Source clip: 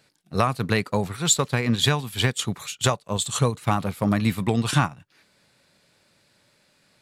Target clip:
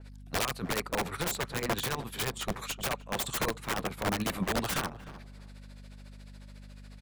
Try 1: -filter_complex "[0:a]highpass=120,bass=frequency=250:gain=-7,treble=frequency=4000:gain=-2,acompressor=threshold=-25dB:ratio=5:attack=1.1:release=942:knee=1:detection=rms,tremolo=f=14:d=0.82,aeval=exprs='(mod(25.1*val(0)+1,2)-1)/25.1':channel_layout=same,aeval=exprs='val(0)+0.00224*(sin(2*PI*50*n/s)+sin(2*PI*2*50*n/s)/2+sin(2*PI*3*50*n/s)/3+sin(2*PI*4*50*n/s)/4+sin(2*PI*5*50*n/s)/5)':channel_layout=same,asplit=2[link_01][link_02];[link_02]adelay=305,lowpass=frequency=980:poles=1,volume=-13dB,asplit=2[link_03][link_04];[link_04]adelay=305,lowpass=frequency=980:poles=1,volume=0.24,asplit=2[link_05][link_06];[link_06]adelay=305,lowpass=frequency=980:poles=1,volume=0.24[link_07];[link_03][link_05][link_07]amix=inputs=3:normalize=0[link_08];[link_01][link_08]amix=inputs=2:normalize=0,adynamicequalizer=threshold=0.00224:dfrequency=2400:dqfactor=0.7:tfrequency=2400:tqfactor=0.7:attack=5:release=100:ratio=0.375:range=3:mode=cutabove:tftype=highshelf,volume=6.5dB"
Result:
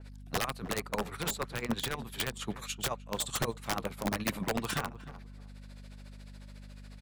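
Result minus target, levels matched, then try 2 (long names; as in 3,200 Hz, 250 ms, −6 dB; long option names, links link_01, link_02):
downward compressor: peak gain reduction +5 dB
-filter_complex "[0:a]highpass=120,bass=frequency=250:gain=-7,treble=frequency=4000:gain=-2,acompressor=threshold=-18.5dB:ratio=5:attack=1.1:release=942:knee=1:detection=rms,tremolo=f=14:d=0.82,aeval=exprs='(mod(25.1*val(0)+1,2)-1)/25.1':channel_layout=same,aeval=exprs='val(0)+0.00224*(sin(2*PI*50*n/s)+sin(2*PI*2*50*n/s)/2+sin(2*PI*3*50*n/s)/3+sin(2*PI*4*50*n/s)/4+sin(2*PI*5*50*n/s)/5)':channel_layout=same,asplit=2[link_01][link_02];[link_02]adelay=305,lowpass=frequency=980:poles=1,volume=-13dB,asplit=2[link_03][link_04];[link_04]adelay=305,lowpass=frequency=980:poles=1,volume=0.24,asplit=2[link_05][link_06];[link_06]adelay=305,lowpass=frequency=980:poles=1,volume=0.24[link_07];[link_03][link_05][link_07]amix=inputs=3:normalize=0[link_08];[link_01][link_08]amix=inputs=2:normalize=0,adynamicequalizer=threshold=0.00224:dfrequency=2400:dqfactor=0.7:tfrequency=2400:tqfactor=0.7:attack=5:release=100:ratio=0.375:range=3:mode=cutabove:tftype=highshelf,volume=6.5dB"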